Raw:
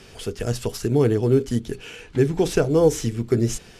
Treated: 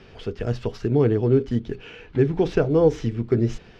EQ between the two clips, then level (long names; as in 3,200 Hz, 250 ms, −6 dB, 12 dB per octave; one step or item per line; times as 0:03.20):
high-frequency loss of the air 240 metres
0.0 dB